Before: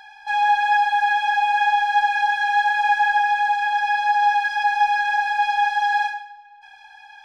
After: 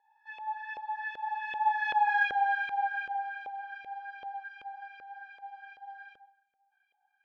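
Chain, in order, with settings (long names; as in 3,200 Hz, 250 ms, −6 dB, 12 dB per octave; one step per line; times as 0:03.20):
source passing by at 0:02.14, 14 m/s, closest 3.8 metres
auto-filter band-pass saw up 2.6 Hz 490–2,700 Hz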